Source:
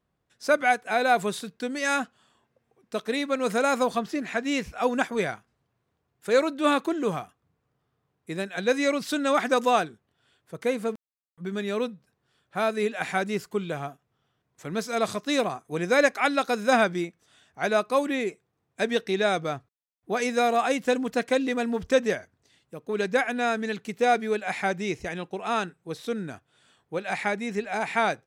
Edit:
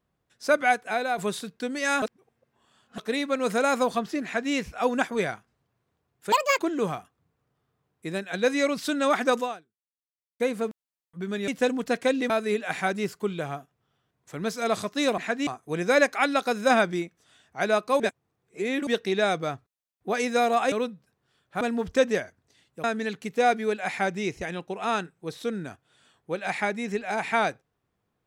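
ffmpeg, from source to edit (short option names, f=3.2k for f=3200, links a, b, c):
-filter_complex "[0:a]asplit=16[a][b][c][d][e][f][g][h][i][j][k][l][m][n][o][p];[a]atrim=end=1.18,asetpts=PTS-STARTPTS,afade=t=out:st=0.87:d=0.31:c=qua:silence=0.446684[q];[b]atrim=start=1.18:end=2.022,asetpts=PTS-STARTPTS,afade=t=in:d=0.004:c=hsin:silence=0.446684[r];[c]atrim=start=2.018:end=2.982,asetpts=PTS-STARTPTS,areverse[s];[d]atrim=start=2.978:end=6.324[t];[e]atrim=start=6.32:end=6.83,asetpts=PTS-STARTPTS,asetrate=83790,aresample=44100,atrim=end_sample=11837,asetpts=PTS-STARTPTS[u];[f]atrim=start=6.826:end=10.64,asetpts=PTS-STARTPTS,afade=t=out:st=2.794:d=1.02:c=exp[v];[g]atrim=start=10.64:end=11.722,asetpts=PTS-STARTPTS,afade=t=in:d=0.004:c=hsin[w];[h]atrim=start=20.738:end=21.562[x];[i]atrim=start=12.608:end=15.492[y];[j]atrim=start=4.238:end=4.532[z];[k]atrim=start=15.488:end=18.022[aa];[l]atrim=start=18.018:end=18.892,asetpts=PTS-STARTPTS,areverse[ab];[m]atrim=start=18.888:end=20.742[ac];[n]atrim=start=11.718:end=12.612[ad];[o]atrim=start=21.558:end=22.792[ae];[p]atrim=start=23.468[af];[q][r]concat=n=2:v=0:a=1[ag];[ag][s]acrossfade=d=0.004:c1=hsin:c2=hsin[ah];[ah][t]acrossfade=d=0.004:c1=hsin:c2=hsin[ai];[ai][u]acrossfade=d=0.004:c1=hsin:c2=hsin[aj];[v][w]concat=n=2:v=0:a=1[ak];[aj][ak]acrossfade=d=0.004:c1=hsin:c2=hsin[al];[al][x]acrossfade=d=0.004:c1=hsin:c2=hsin[am];[am][y]acrossfade=d=0.004:c1=hsin:c2=hsin[an];[an][z]acrossfade=d=0.004:c1=hsin:c2=hsin[ao];[ao][aa]acrossfade=d=0.004:c1=hsin:c2=hsin[ap];[ap][ab]acrossfade=d=0.004:c1=hsin:c2=hsin[aq];[aq][ac]acrossfade=d=0.004:c1=hsin:c2=hsin[ar];[ar][ad]acrossfade=d=0.004:c1=hsin:c2=hsin[as];[as][ae]acrossfade=d=0.004:c1=hsin:c2=hsin[at];[at][af]acrossfade=d=0.004:c1=hsin:c2=hsin"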